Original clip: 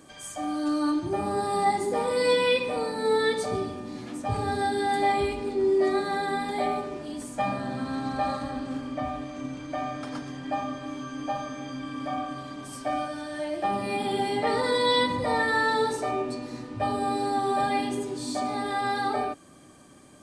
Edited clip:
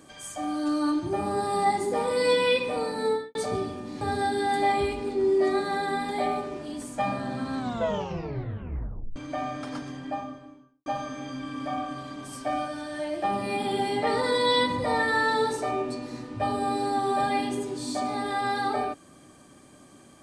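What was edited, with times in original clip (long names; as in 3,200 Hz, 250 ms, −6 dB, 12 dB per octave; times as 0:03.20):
0:03.02–0:03.35: fade out and dull
0:04.01–0:04.41: remove
0:07.96: tape stop 1.60 s
0:10.20–0:11.26: fade out and dull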